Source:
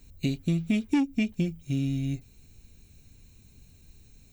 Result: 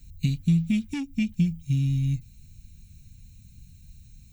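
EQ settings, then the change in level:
guitar amp tone stack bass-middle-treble 5-5-5
low shelf with overshoot 270 Hz +12.5 dB, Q 1.5
+7.0 dB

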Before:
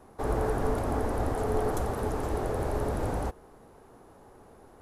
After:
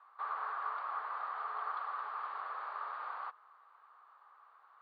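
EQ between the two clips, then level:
four-pole ladder high-pass 1,100 Hz, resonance 75%
Chebyshev low-pass filter 4,500 Hz, order 6
high-frequency loss of the air 110 metres
+4.0 dB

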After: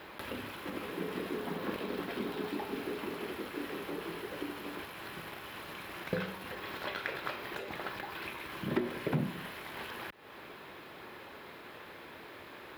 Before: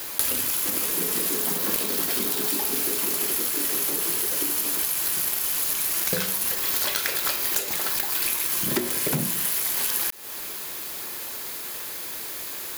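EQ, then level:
high-pass filter 58 Hz
high-frequency loss of the air 450 metres
notch filter 4,600 Hz, Q 19
−3.5 dB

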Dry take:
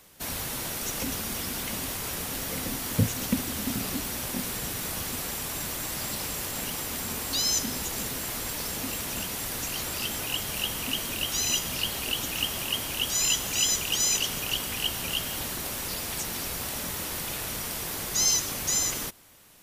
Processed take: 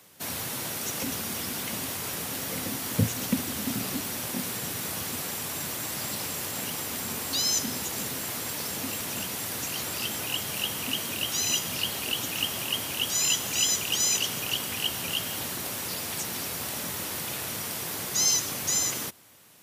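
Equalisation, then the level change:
high-pass filter 88 Hz 24 dB per octave
0.0 dB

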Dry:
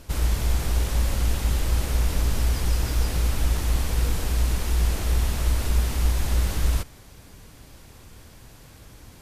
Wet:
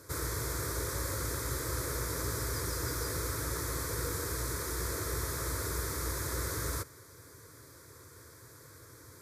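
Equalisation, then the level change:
high-pass filter 96 Hz 24 dB per octave
notch filter 590 Hz, Q 12
phaser with its sweep stopped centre 770 Hz, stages 6
0.0 dB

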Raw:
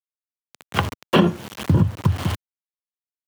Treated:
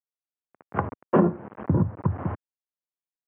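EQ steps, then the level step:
Gaussian smoothing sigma 6.4 samples
low-shelf EQ 140 Hz −11 dB
0.0 dB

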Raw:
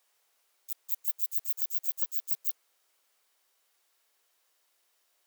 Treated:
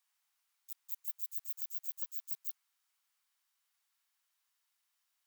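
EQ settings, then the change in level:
high-pass filter 870 Hz 24 dB per octave
−9.0 dB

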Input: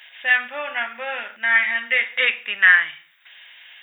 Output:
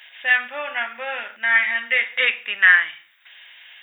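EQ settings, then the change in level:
parametric band 130 Hz −9 dB 0.93 octaves
0.0 dB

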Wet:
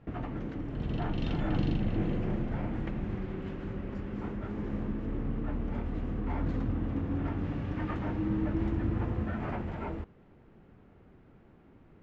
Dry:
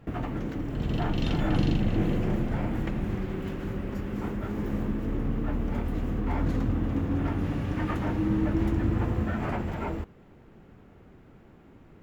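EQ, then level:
high-frequency loss of the air 130 metres
−4.5 dB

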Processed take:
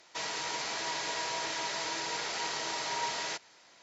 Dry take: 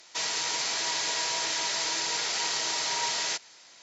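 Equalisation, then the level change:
high-shelf EQ 2,800 Hz −11 dB
0.0 dB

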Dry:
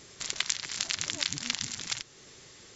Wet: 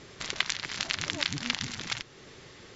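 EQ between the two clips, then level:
low-pass filter 3,700 Hz 6 dB per octave
high-frequency loss of the air 84 metres
+6.0 dB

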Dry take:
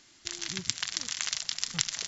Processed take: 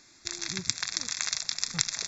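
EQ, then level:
Butterworth band-reject 3,000 Hz, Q 3.8
+2.0 dB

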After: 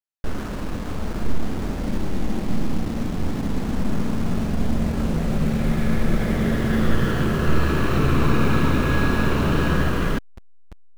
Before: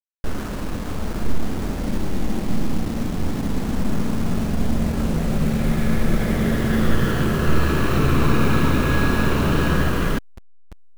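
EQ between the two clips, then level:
high-shelf EQ 7,300 Hz −6 dB
−1.0 dB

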